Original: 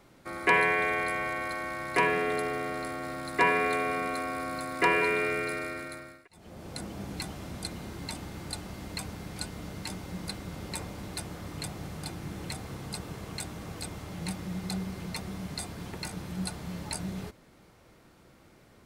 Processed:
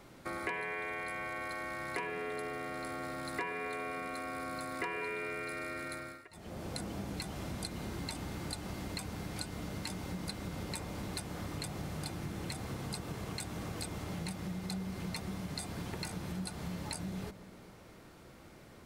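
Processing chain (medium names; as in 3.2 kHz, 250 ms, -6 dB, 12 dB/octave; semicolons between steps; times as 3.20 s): compression 6:1, threshold -39 dBFS, peak gain reduction 19 dB; on a send: feedback echo behind a low-pass 127 ms, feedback 70%, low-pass 1.2 kHz, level -15 dB; on the sum: trim +2.5 dB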